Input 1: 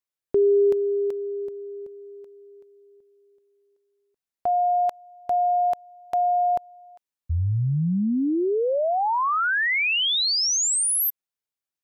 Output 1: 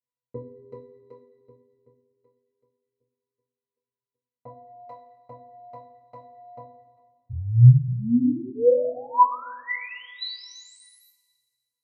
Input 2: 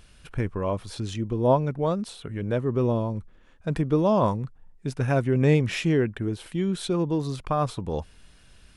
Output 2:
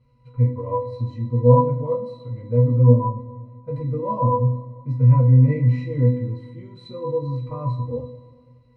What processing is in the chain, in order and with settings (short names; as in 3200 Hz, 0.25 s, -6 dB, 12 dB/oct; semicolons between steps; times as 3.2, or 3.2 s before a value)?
octave resonator B, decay 0.28 s; two-slope reverb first 0.27 s, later 1.8 s, from -18 dB, DRR -7.5 dB; gain +6 dB